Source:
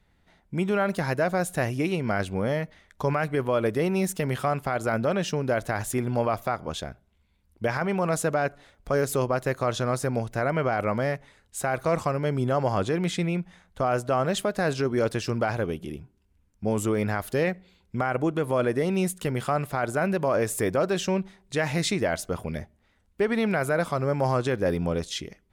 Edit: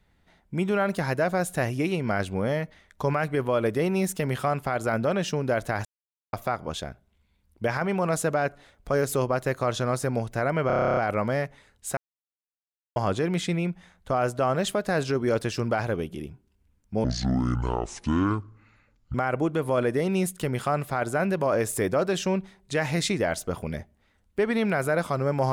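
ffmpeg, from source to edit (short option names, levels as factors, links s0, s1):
-filter_complex "[0:a]asplit=17[s0][s1][s2][s3][s4][s5][s6][s7][s8][s9][s10][s11][s12][s13][s14][s15][s16];[s0]atrim=end=5.85,asetpts=PTS-STARTPTS,afade=t=out:st=5.846:d=0.004:c=hsin[s17];[s1]atrim=start=5.85:end=6.33,asetpts=PTS-STARTPTS,volume=0[s18];[s2]atrim=start=6.33:end=10.702,asetpts=PTS-STARTPTS,afade=t=in:d=0.004:c=hsin[s19];[s3]atrim=start=10.668:end=10.702[s20];[s4]atrim=start=10.668:end=10.702[s21];[s5]atrim=start=10.668:end=10.702[s22];[s6]atrim=start=10.668:end=10.702[s23];[s7]atrim=start=10.668:end=10.702[s24];[s8]atrim=start=10.668:end=10.702[s25];[s9]atrim=start=10.668:end=10.702[s26];[s10]atrim=start=10.668:end=10.702[s27];[s11]atrim=start=10.668:end=10.702[s28];[s12]atrim=start=10.668:end=11.67,asetpts=PTS-STARTPTS,afade=t=out:st=0.998:d=0.004:c=hsin[s29];[s13]atrim=start=11.67:end=12.66,asetpts=PTS-STARTPTS,volume=0[s30];[s14]atrim=start=12.66:end=16.744,asetpts=PTS-STARTPTS,afade=t=in:d=0.004:c=hsin[s31];[s15]atrim=start=16.74:end=17.96,asetpts=PTS-STARTPTS,asetrate=25578,aresample=44100,atrim=end_sample=92762,asetpts=PTS-STARTPTS[s32];[s16]atrim=start=17.956[s33];[s17][s18][s19]concat=n=3:v=0:a=1[s34];[s34][s20]acrossfade=d=0.004:c1=hsin:c2=hsin[s35];[s35][s21]acrossfade=d=0.004:c1=hsin:c2=hsin[s36];[s36][s22]acrossfade=d=0.004:c1=hsin:c2=hsin[s37];[s37][s23]acrossfade=d=0.004:c1=hsin:c2=hsin[s38];[s38][s24]acrossfade=d=0.004:c1=hsin:c2=hsin[s39];[s39][s25]acrossfade=d=0.004:c1=hsin:c2=hsin[s40];[s40][s26]acrossfade=d=0.004:c1=hsin:c2=hsin[s41];[s41][s27]acrossfade=d=0.004:c1=hsin:c2=hsin[s42];[s42][s28]acrossfade=d=0.004:c1=hsin:c2=hsin[s43];[s29][s30][s31]concat=n=3:v=0:a=1[s44];[s43][s44]acrossfade=d=0.004:c1=hsin:c2=hsin[s45];[s45][s32]acrossfade=d=0.004:c1=hsin:c2=hsin[s46];[s46][s33]acrossfade=d=0.004:c1=hsin:c2=hsin"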